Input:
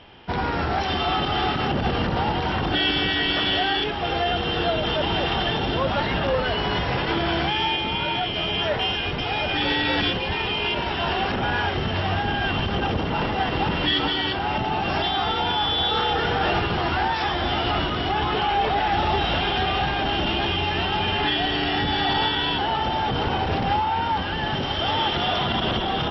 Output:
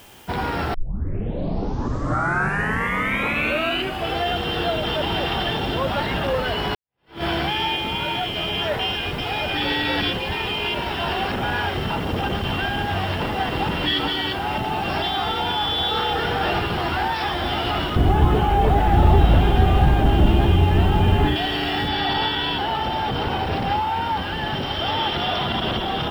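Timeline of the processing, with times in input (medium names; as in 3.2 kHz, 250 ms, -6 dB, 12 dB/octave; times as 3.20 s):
0.74 s: tape start 3.46 s
6.75–7.23 s: fade in exponential
11.90–13.20 s: reverse
17.96–21.36 s: tilt EQ -4 dB/octave
21.88 s: noise floor step -51 dB -57 dB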